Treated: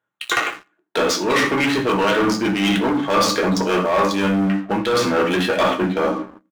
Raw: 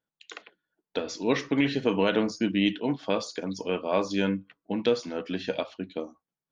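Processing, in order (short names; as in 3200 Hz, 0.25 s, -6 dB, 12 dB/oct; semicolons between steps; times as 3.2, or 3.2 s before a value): Wiener smoothing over 9 samples; in parallel at -3 dB: soft clip -28 dBFS, distortion -6 dB; on the sum: HPF 260 Hz 6 dB/oct; high shelf 3400 Hz +5.5 dB; reverb RT60 0.55 s, pre-delay 4 ms, DRR 1.5 dB; reverse; compressor 12:1, threshold -32 dBFS, peak gain reduction 17.5 dB; reverse; sample leveller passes 3; bell 1300 Hz +7 dB 1.1 oct; doubler 16 ms -13.5 dB; gain +8 dB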